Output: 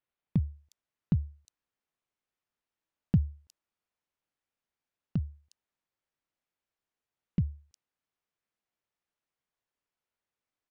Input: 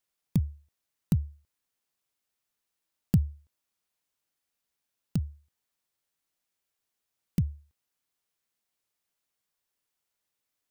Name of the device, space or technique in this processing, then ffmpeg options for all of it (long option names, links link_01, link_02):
behind a face mask: -filter_complex "[0:a]lowpass=6100,highshelf=frequency=3300:gain=-7.5,acrossover=split=4400[link_01][link_02];[link_02]adelay=360[link_03];[link_01][link_03]amix=inputs=2:normalize=0,volume=-1.5dB"